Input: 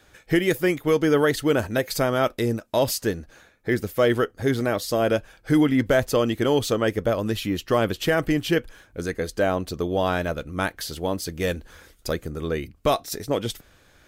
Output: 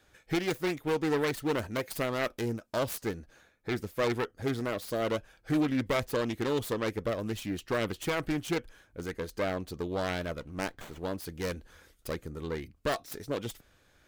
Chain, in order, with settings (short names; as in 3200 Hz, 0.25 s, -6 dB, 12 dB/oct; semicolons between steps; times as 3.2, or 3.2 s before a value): self-modulated delay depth 0.29 ms; 10.4–11.04 running maximum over 9 samples; gain -8.5 dB